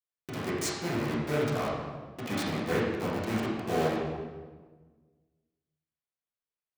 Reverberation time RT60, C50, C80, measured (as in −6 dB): 1.4 s, −0.5 dB, 2.5 dB